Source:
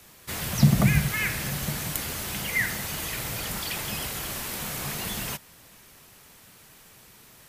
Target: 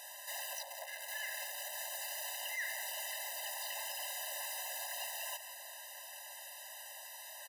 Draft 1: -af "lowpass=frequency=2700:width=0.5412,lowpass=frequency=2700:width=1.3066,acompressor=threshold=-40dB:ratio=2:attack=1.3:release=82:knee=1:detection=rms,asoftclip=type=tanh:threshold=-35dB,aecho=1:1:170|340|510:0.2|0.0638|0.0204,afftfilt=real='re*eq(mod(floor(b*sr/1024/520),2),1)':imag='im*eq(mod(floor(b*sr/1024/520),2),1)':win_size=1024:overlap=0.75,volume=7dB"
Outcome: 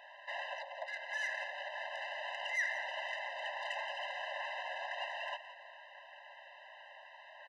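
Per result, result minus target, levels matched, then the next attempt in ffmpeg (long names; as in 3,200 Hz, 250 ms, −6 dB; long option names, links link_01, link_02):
2,000 Hz band +4.0 dB; soft clipping: distortion −5 dB
-af "acompressor=threshold=-40dB:ratio=2:attack=1.3:release=82:knee=1:detection=rms,asoftclip=type=tanh:threshold=-35dB,aecho=1:1:170|340|510:0.2|0.0638|0.0204,afftfilt=real='re*eq(mod(floor(b*sr/1024/520),2),1)':imag='im*eq(mod(floor(b*sr/1024/520),2),1)':win_size=1024:overlap=0.75,volume=7dB"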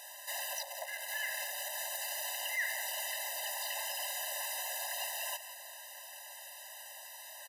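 soft clipping: distortion −5 dB
-af "acompressor=threshold=-40dB:ratio=2:attack=1.3:release=82:knee=1:detection=rms,asoftclip=type=tanh:threshold=-42dB,aecho=1:1:170|340|510:0.2|0.0638|0.0204,afftfilt=real='re*eq(mod(floor(b*sr/1024/520),2),1)':imag='im*eq(mod(floor(b*sr/1024/520),2),1)':win_size=1024:overlap=0.75,volume=7dB"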